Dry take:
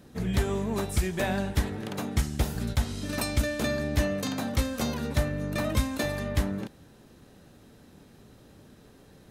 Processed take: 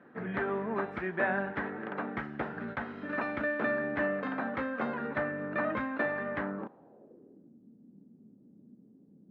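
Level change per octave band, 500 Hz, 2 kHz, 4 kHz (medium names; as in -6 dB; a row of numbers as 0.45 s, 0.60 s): -1.5 dB, +2.5 dB, -19.0 dB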